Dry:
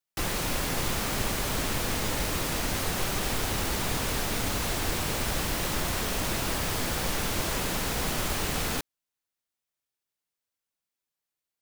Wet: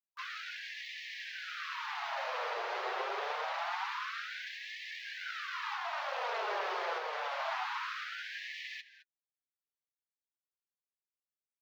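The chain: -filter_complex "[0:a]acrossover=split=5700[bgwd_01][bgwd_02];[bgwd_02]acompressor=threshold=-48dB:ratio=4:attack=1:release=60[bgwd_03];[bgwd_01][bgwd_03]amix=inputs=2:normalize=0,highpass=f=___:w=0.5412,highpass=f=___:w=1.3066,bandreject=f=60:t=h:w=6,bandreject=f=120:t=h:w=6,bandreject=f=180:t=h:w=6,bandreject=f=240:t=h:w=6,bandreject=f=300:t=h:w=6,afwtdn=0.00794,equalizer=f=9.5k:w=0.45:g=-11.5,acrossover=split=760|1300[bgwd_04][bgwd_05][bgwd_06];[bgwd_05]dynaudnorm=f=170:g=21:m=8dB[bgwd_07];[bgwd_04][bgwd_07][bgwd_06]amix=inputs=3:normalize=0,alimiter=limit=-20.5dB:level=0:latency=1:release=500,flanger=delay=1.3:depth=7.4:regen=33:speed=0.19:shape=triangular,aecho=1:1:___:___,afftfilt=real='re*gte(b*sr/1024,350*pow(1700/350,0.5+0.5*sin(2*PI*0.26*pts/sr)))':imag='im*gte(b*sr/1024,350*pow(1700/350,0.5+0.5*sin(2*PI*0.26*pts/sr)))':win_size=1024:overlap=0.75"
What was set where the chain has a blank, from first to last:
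150, 150, 213, 0.158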